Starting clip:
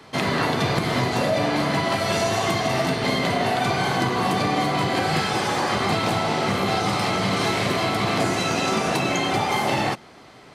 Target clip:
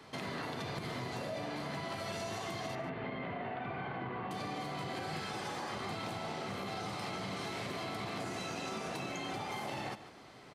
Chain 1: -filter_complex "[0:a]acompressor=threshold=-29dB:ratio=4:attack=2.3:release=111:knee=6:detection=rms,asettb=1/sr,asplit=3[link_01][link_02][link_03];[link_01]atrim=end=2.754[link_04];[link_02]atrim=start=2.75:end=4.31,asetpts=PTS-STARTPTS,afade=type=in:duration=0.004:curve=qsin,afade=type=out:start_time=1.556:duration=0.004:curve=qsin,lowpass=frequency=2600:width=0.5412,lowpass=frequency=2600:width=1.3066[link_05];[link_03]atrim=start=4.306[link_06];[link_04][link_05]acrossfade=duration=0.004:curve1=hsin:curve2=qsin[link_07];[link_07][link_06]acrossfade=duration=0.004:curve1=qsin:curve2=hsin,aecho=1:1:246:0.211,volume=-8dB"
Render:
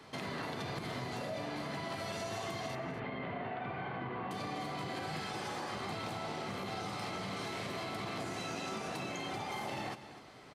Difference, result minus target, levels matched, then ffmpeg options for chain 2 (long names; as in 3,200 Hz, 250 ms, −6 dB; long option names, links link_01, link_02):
echo 102 ms late
-filter_complex "[0:a]acompressor=threshold=-29dB:ratio=4:attack=2.3:release=111:knee=6:detection=rms,asettb=1/sr,asplit=3[link_01][link_02][link_03];[link_01]atrim=end=2.754[link_04];[link_02]atrim=start=2.75:end=4.31,asetpts=PTS-STARTPTS,afade=type=in:duration=0.004:curve=qsin,afade=type=out:start_time=1.556:duration=0.004:curve=qsin,lowpass=frequency=2600:width=0.5412,lowpass=frequency=2600:width=1.3066[link_05];[link_03]atrim=start=4.306[link_06];[link_04][link_05]acrossfade=duration=0.004:curve1=hsin:curve2=qsin[link_07];[link_07][link_06]acrossfade=duration=0.004:curve1=qsin:curve2=hsin,aecho=1:1:144:0.211,volume=-8dB"